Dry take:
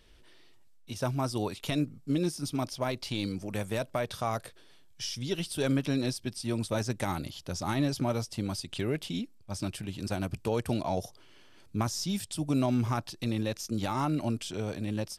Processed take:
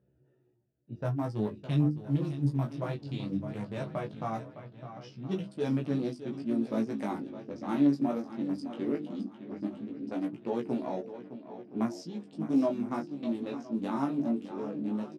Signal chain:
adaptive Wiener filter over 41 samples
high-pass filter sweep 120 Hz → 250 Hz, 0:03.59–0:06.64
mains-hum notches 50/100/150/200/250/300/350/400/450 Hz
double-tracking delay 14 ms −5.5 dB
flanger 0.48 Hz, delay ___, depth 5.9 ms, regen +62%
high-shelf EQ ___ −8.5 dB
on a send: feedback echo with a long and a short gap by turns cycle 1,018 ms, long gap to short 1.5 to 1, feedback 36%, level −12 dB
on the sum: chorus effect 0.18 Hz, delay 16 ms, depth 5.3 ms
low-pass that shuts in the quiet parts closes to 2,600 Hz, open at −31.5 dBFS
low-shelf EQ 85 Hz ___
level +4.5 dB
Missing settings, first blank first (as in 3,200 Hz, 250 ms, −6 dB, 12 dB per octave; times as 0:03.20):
5.4 ms, 2,100 Hz, −7 dB